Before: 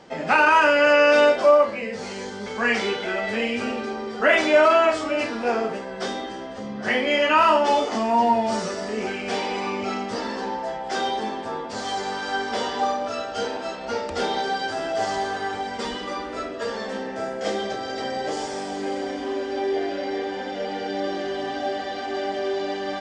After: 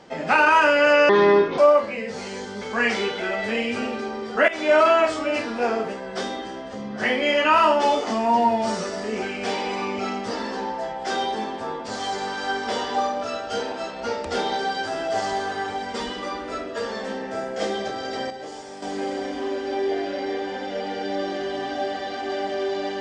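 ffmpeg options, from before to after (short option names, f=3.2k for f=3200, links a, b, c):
-filter_complex "[0:a]asplit=6[a][b][c][d][e][f];[a]atrim=end=1.094[g];[b]atrim=start=1.09:end=1.43,asetpts=PTS-STARTPTS,asetrate=30429,aresample=44100,atrim=end_sample=21730,asetpts=PTS-STARTPTS[h];[c]atrim=start=1.426:end=4.33,asetpts=PTS-STARTPTS,afade=t=out:st=2.9:d=0.004:c=hsin:silence=0.133352[i];[d]atrim=start=4.33:end=18.152,asetpts=PTS-STARTPTS,afade=t=in:d=0.29:silence=0.133352[j];[e]atrim=start=18.148:end=18.672,asetpts=PTS-STARTPTS,volume=-8.5dB[k];[f]atrim=start=18.668[l];[g][h]acrossfade=d=0.004:c1=hsin:c2=hsin[m];[i][j]concat=n=2:v=0:a=1[n];[m][n]acrossfade=d=0.004:c1=hsin:c2=hsin[o];[o][k]acrossfade=d=0.004:c1=hsin:c2=hsin[p];[p][l]acrossfade=d=0.004:c1=hsin:c2=hsin"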